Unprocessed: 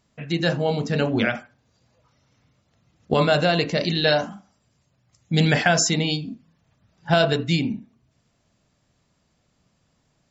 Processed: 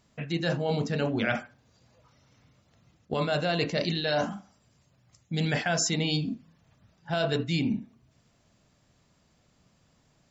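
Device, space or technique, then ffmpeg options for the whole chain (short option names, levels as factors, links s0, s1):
compression on the reversed sound: -af "areverse,acompressor=threshold=0.0562:ratio=16,areverse,volume=1.19"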